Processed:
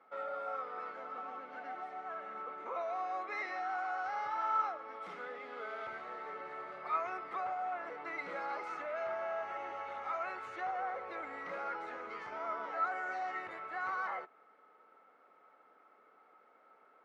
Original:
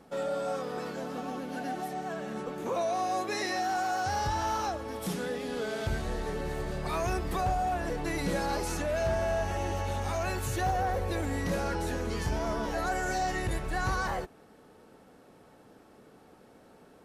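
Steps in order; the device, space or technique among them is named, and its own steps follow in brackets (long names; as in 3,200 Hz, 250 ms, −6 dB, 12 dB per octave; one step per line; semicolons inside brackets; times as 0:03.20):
tin-can telephone (band-pass filter 620–2,000 Hz; hollow resonant body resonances 1,300/2,100 Hz, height 15 dB, ringing for 30 ms)
level −6.5 dB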